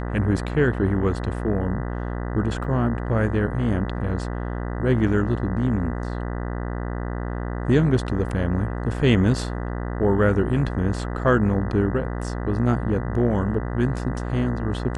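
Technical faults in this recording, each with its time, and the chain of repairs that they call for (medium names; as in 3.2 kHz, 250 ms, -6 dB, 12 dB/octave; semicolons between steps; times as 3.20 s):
buzz 60 Hz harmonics 33 -28 dBFS
2.64 s: dropout 3.3 ms
8.29 s: dropout 2.7 ms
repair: de-hum 60 Hz, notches 33; interpolate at 2.64 s, 3.3 ms; interpolate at 8.29 s, 2.7 ms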